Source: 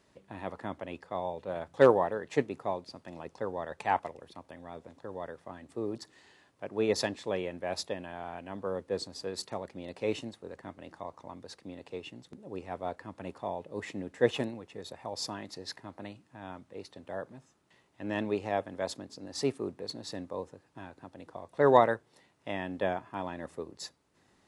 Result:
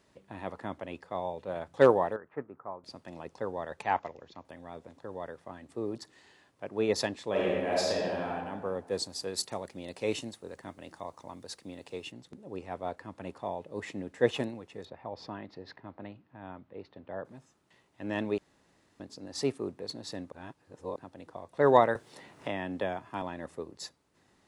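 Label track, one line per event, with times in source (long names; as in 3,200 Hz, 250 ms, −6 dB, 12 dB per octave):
2.160000	2.840000	transistor ladder low-pass 1,500 Hz, resonance 60%
3.820000	4.450000	Chebyshev low-pass filter 6,900 Hz, order 6
7.290000	8.290000	thrown reverb, RT60 1.6 s, DRR −5 dB
8.870000	12.120000	high-shelf EQ 5,300 Hz +11.5 dB
14.850000	17.250000	high-frequency loss of the air 320 metres
18.380000	19.000000	fill with room tone
20.320000	20.960000	reverse
21.950000	23.220000	multiband upward and downward compressor depth 70%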